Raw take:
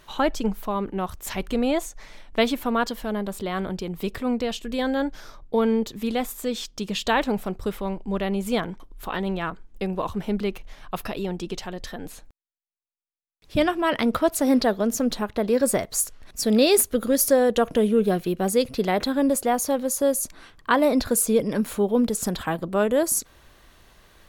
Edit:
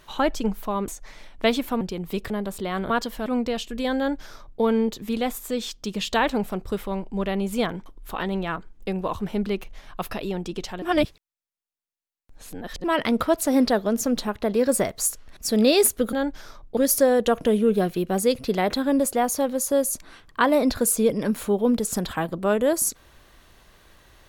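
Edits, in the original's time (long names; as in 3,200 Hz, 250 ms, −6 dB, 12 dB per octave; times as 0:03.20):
0:00.88–0:01.82: remove
0:02.75–0:03.11: swap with 0:03.71–0:04.20
0:04.92–0:05.56: duplicate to 0:17.07
0:11.76–0:13.78: reverse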